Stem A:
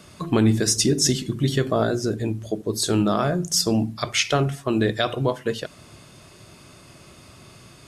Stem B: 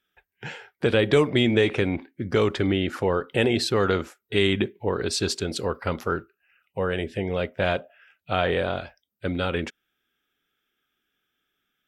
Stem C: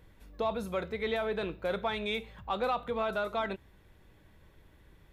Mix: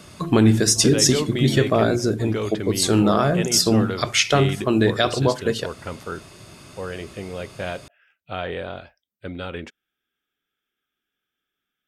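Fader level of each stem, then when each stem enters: +3.0, −5.5, −13.5 decibels; 0.00, 0.00, 0.35 seconds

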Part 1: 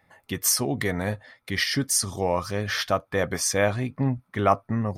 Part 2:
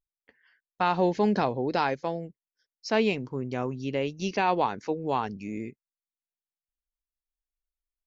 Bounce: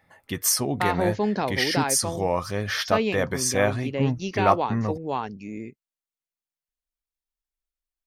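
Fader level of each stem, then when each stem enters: 0.0, −0.5 decibels; 0.00, 0.00 seconds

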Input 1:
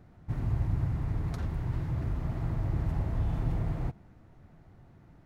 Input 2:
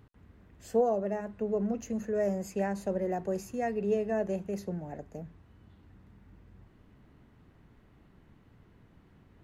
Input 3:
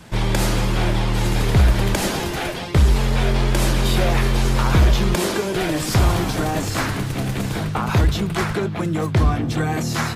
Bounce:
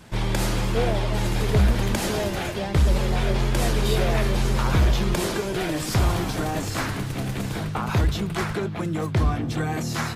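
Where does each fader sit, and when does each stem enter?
−6.5, 0.0, −4.5 decibels; 1.65, 0.00, 0.00 seconds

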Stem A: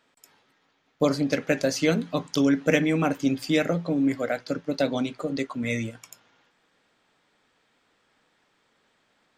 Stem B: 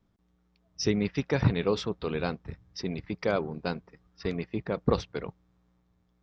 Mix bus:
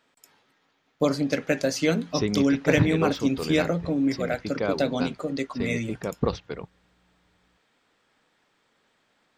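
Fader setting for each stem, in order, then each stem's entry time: −0.5, 0.0 decibels; 0.00, 1.35 seconds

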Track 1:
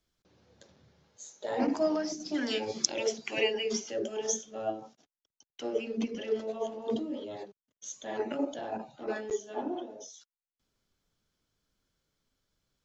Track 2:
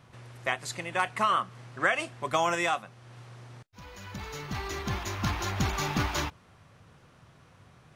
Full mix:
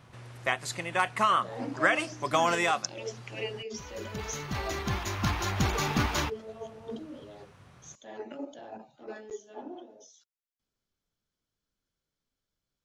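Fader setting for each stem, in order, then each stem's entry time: −7.5, +1.0 decibels; 0.00, 0.00 seconds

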